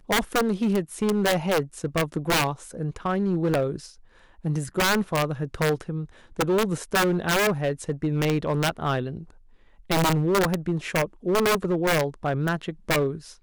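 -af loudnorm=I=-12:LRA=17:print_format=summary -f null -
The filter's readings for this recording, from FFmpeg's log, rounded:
Input Integrated:    -25.0 LUFS
Input True Peak:     -14.7 dBTP
Input LRA:             1.4 LU
Input Threshold:     -35.3 LUFS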